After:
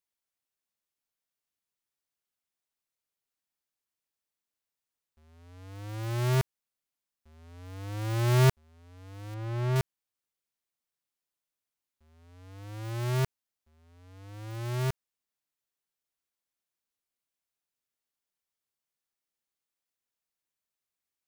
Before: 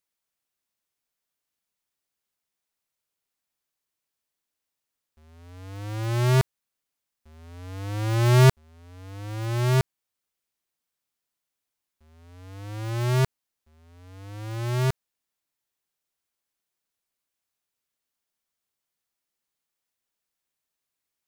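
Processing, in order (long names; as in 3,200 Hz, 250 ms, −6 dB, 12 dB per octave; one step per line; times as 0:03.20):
stylus tracing distortion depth 0.44 ms
0:09.34–0:09.76: low-pass filter 2,000 Hz 6 dB per octave
level −6 dB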